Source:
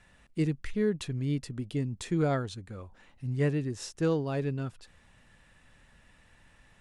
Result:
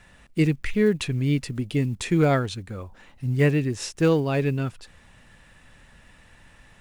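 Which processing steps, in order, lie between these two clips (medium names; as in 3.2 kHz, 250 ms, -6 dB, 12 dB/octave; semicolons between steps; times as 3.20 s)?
block-companded coder 7-bit; dynamic bell 2.4 kHz, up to +7 dB, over -58 dBFS, Q 2.2; trim +7.5 dB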